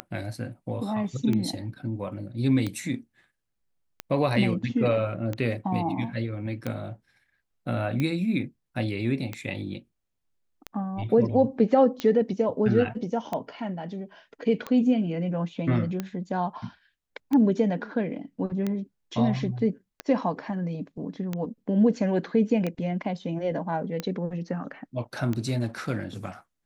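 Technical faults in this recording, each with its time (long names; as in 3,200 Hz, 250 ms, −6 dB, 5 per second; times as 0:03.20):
scratch tick 45 rpm −16 dBFS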